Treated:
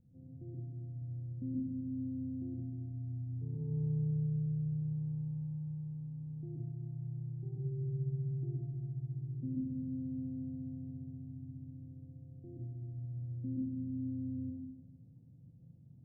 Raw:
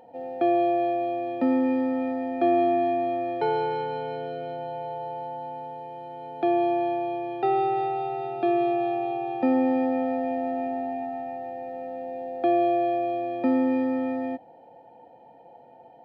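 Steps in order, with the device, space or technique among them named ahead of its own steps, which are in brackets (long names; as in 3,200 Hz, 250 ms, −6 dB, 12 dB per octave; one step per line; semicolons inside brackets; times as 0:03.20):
club heard from the street (brickwall limiter −20 dBFS, peak gain reduction 7.5 dB; low-pass filter 140 Hz 24 dB per octave; convolution reverb RT60 0.95 s, pre-delay 116 ms, DRR −4.5 dB)
level +8.5 dB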